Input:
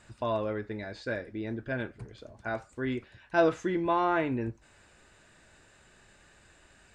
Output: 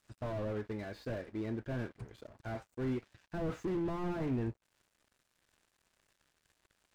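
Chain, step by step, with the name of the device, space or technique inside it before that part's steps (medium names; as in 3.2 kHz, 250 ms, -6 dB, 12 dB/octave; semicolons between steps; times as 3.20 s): early transistor amplifier (crossover distortion -55 dBFS; slew-rate limiter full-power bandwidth 9.9 Hz); trim -1.5 dB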